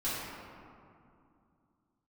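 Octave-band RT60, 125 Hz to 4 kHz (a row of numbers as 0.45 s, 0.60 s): 3.2 s, 3.2 s, 2.5 s, 2.5 s, 1.8 s, 1.1 s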